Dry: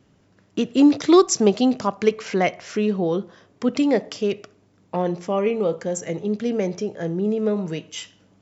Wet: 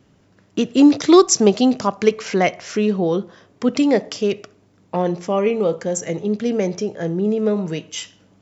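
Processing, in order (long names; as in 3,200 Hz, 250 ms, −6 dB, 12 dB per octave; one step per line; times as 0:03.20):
dynamic equaliser 6,000 Hz, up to +3 dB, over −47 dBFS, Q 1.4
level +3 dB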